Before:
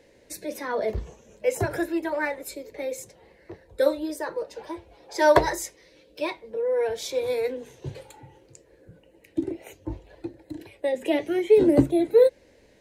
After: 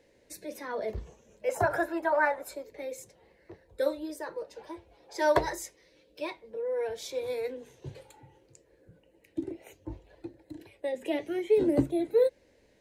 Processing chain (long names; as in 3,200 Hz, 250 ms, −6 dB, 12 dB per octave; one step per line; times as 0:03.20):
0:01.49–0:02.64: flat-topped bell 990 Hz +12 dB
level −7 dB